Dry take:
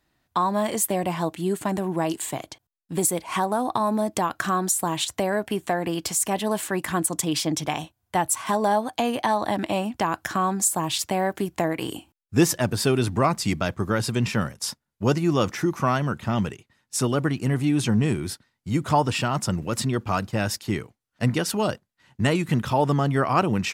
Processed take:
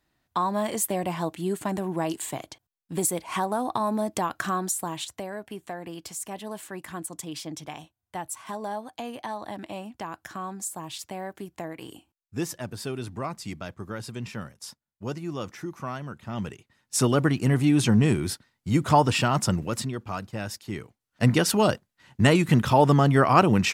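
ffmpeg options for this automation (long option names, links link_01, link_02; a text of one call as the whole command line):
ffmpeg -i in.wav -af "volume=21dB,afade=type=out:start_time=4.43:duration=0.85:silence=0.375837,afade=type=in:start_time=16.26:duration=0.75:silence=0.223872,afade=type=out:start_time=19.47:duration=0.47:silence=0.334965,afade=type=in:start_time=20.71:duration=0.64:silence=0.281838" out.wav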